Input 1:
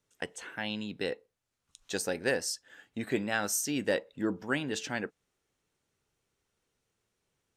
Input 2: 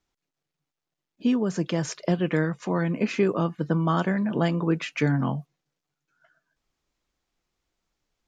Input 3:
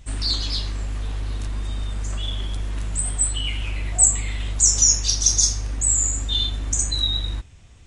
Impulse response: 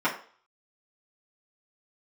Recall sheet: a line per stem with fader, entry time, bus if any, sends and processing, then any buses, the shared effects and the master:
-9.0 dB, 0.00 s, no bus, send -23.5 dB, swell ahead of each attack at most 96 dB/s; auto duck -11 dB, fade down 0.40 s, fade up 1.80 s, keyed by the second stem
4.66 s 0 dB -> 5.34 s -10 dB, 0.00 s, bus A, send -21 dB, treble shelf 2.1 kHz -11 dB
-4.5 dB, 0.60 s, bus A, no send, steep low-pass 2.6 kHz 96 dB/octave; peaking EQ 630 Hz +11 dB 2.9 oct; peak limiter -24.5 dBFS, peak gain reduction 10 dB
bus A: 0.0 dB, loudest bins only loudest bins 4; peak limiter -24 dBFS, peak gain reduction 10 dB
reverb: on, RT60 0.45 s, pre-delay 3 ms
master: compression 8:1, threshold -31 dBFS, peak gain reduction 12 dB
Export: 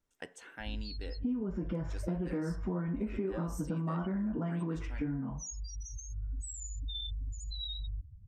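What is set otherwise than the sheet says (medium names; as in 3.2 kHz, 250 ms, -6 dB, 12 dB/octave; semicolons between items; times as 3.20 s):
stem 1: missing swell ahead of each attack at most 96 dB/s; stem 3: missing steep low-pass 2.6 kHz 96 dB/octave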